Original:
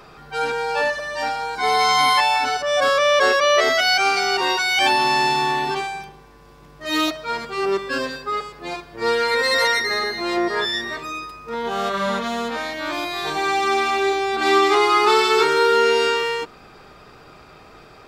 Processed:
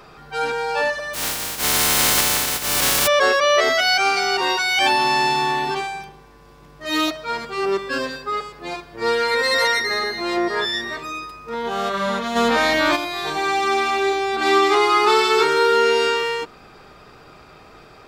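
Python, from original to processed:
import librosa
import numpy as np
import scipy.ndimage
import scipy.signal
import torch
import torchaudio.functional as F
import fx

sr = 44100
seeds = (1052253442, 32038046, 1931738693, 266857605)

y = fx.spec_flatten(x, sr, power=0.13, at=(1.13, 3.06), fade=0.02)
y = fx.env_flatten(y, sr, amount_pct=70, at=(12.35, 12.95), fade=0.02)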